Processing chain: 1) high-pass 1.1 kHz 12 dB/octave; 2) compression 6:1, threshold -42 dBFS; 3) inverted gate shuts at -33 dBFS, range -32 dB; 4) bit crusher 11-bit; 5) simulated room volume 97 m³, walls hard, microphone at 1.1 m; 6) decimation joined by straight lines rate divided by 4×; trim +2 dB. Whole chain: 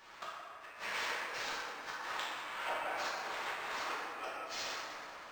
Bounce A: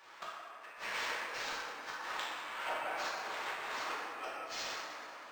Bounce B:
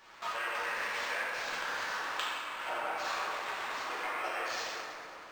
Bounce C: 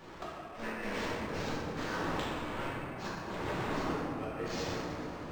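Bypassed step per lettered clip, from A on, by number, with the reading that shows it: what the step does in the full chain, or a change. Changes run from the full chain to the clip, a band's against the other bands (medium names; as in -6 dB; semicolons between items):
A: 4, distortion -21 dB; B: 3, momentary loudness spread change -5 LU; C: 1, 125 Hz band +26.0 dB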